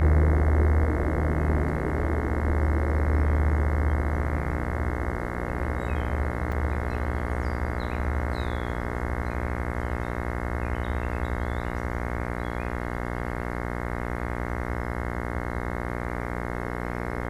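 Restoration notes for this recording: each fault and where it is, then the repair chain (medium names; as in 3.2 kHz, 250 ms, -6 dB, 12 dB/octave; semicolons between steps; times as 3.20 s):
buzz 60 Hz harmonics 36 -31 dBFS
6.52 s: dropout 3.9 ms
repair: de-hum 60 Hz, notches 36; interpolate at 6.52 s, 3.9 ms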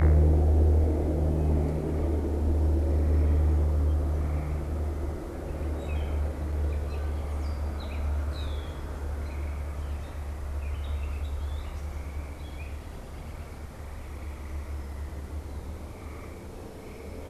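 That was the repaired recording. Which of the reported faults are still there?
nothing left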